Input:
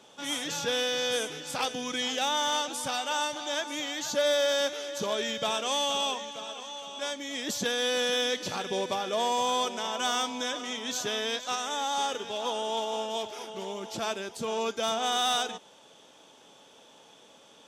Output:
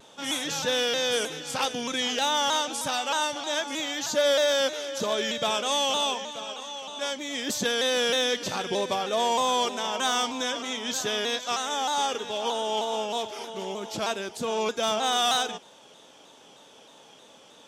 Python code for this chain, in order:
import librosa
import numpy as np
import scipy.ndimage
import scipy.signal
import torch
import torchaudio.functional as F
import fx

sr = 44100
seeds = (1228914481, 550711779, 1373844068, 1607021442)

y = fx.vibrato_shape(x, sr, shape='saw_down', rate_hz=3.2, depth_cents=100.0)
y = F.gain(torch.from_numpy(y), 3.0).numpy()